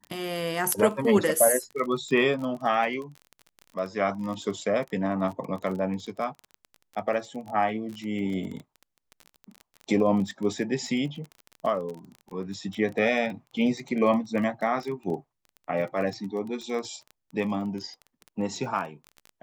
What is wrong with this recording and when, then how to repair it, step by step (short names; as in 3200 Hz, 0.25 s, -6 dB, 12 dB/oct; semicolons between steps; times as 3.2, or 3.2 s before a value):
crackle 23/s -33 dBFS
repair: de-click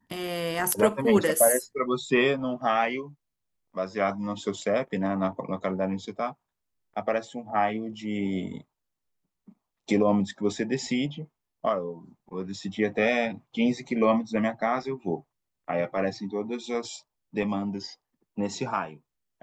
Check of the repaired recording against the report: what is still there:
none